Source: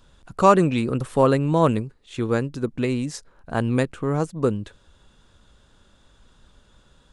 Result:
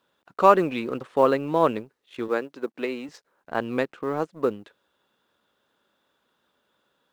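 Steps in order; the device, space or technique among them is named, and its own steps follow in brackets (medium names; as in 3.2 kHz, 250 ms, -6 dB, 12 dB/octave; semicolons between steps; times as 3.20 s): phone line with mismatched companding (band-pass 320–3500 Hz; companding laws mixed up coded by A); 2.28–3.09 s: high-pass 250 Hz 12 dB/octave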